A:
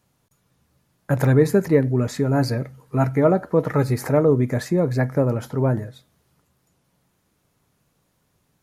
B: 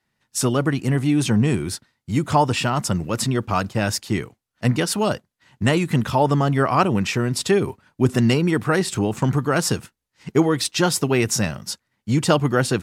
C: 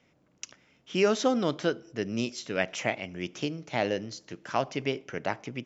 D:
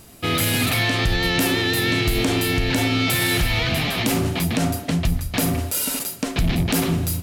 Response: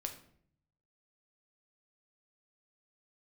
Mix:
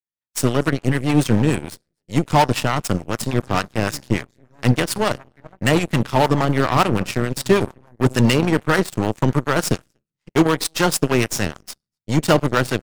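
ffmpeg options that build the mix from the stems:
-filter_complex "[0:a]aecho=1:1:1.1:0.95,adelay=2200,volume=-12dB,asplit=2[link_01][link_02];[link_02]volume=-7.5dB[link_03];[1:a]volume=2.5dB,asplit=3[link_04][link_05][link_06];[link_05]volume=-7dB[link_07];[link_06]volume=-22.5dB[link_08];[2:a]alimiter=limit=-21.5dB:level=0:latency=1,volume=-18dB,asplit=2[link_09][link_10];[link_10]volume=-3dB[link_11];[4:a]atrim=start_sample=2205[link_12];[link_07][link_11]amix=inputs=2:normalize=0[link_13];[link_13][link_12]afir=irnorm=-1:irlink=0[link_14];[link_03][link_08]amix=inputs=2:normalize=0,aecho=0:1:243:1[link_15];[link_01][link_04][link_09][link_14][link_15]amix=inputs=5:normalize=0,aeval=exprs='0.473*(cos(1*acos(clip(val(0)/0.473,-1,1)))-cos(1*PI/2))+0.106*(cos(3*acos(clip(val(0)/0.473,-1,1)))-cos(3*PI/2))+0.0376*(cos(4*acos(clip(val(0)/0.473,-1,1)))-cos(4*PI/2))+0.0211*(cos(7*acos(clip(val(0)/0.473,-1,1)))-cos(7*PI/2))':channel_layout=same,acrossover=split=690[link_16][link_17];[link_16]aeval=exprs='val(0)*(1-0.5/2+0.5/2*cos(2*PI*6.8*n/s))':channel_layout=same[link_18];[link_17]aeval=exprs='val(0)*(1-0.5/2-0.5/2*cos(2*PI*6.8*n/s))':channel_layout=same[link_19];[link_18][link_19]amix=inputs=2:normalize=0"

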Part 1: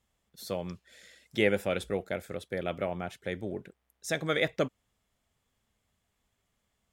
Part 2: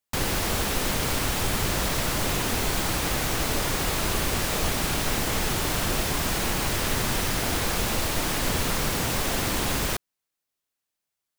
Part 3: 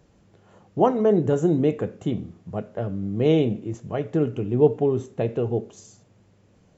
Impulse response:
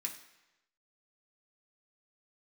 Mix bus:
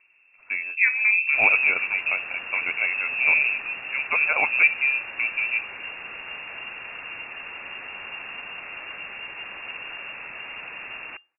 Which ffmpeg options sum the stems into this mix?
-filter_complex "[0:a]agate=range=-14dB:threshold=-55dB:ratio=16:detection=peak,acontrast=89,volume=-2dB[link_01];[1:a]adelay=1200,volume=-10dB,asplit=2[link_02][link_03];[link_03]volume=-22dB[link_04];[2:a]volume=-2dB[link_05];[3:a]atrim=start_sample=2205[link_06];[link_04][link_06]afir=irnorm=-1:irlink=0[link_07];[link_01][link_02][link_05][link_07]amix=inputs=4:normalize=0,lowpass=frequency=2400:width_type=q:width=0.5098,lowpass=frequency=2400:width_type=q:width=0.6013,lowpass=frequency=2400:width_type=q:width=0.9,lowpass=frequency=2400:width_type=q:width=2.563,afreqshift=-2800"

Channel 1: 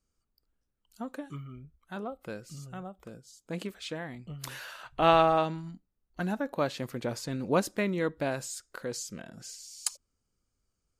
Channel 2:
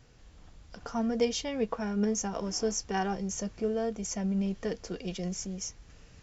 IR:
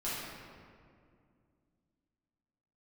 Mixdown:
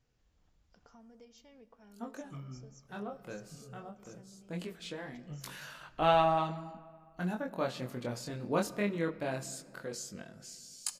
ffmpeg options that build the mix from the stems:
-filter_complex "[0:a]flanger=delay=19.5:depth=5.3:speed=0.2,adelay=1000,volume=-2dB,asplit=2[link_01][link_02];[link_02]volume=-19dB[link_03];[1:a]acompressor=threshold=-40dB:ratio=3,volume=-18.5dB,asplit=2[link_04][link_05];[link_05]volume=-19dB[link_06];[2:a]atrim=start_sample=2205[link_07];[link_03][link_06]amix=inputs=2:normalize=0[link_08];[link_08][link_07]afir=irnorm=-1:irlink=0[link_09];[link_01][link_04][link_09]amix=inputs=3:normalize=0"

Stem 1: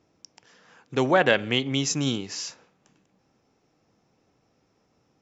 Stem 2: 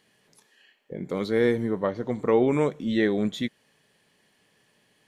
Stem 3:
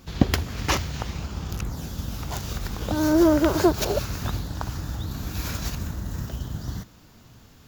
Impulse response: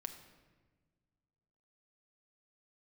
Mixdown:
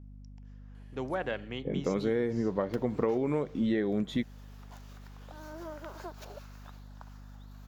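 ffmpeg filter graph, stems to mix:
-filter_complex "[0:a]volume=-12.5dB[link_01];[1:a]adelay=750,volume=2dB[link_02];[2:a]highpass=720,adelay=2400,volume=-15.5dB[link_03];[link_01][link_02][link_03]amix=inputs=3:normalize=0,highshelf=frequency=2600:gain=-10.5,aeval=exprs='val(0)+0.00447*(sin(2*PI*50*n/s)+sin(2*PI*2*50*n/s)/2+sin(2*PI*3*50*n/s)/3+sin(2*PI*4*50*n/s)/4+sin(2*PI*5*50*n/s)/5)':channel_layout=same,acompressor=threshold=-25dB:ratio=12"

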